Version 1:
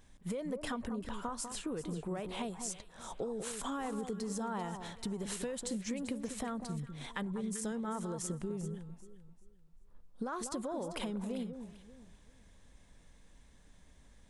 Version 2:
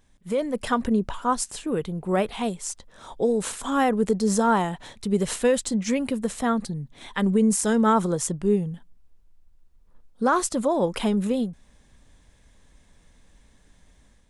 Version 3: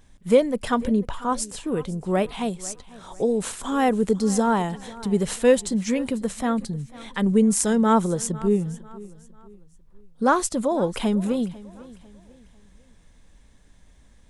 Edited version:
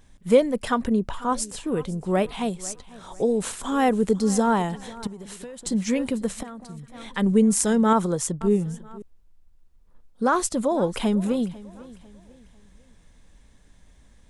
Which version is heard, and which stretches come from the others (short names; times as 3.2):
3
0.58–1.12 from 2
5.07–5.66 from 1
6.43–6.88 from 1
7.93–8.41 from 2
9.02–10.35 from 2